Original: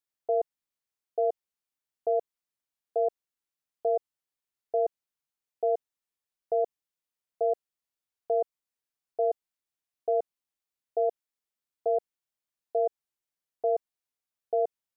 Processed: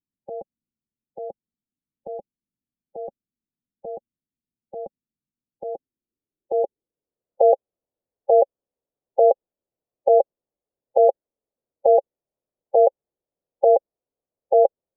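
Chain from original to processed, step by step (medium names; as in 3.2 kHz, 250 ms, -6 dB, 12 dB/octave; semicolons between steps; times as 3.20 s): formant shift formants +3 st; low-pass sweep 230 Hz -> 530 Hz, 5.41–7.40 s; trim +9 dB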